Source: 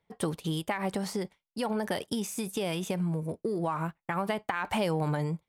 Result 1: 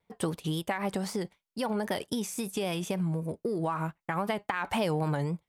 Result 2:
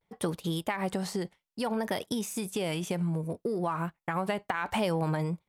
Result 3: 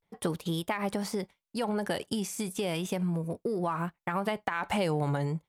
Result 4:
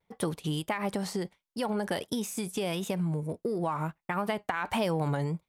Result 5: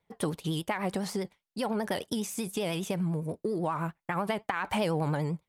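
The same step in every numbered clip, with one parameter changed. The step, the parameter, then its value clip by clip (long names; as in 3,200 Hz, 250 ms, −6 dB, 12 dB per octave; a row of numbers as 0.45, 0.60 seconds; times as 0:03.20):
pitch vibrato, speed: 3.8, 0.63, 0.35, 1.5, 10 Hertz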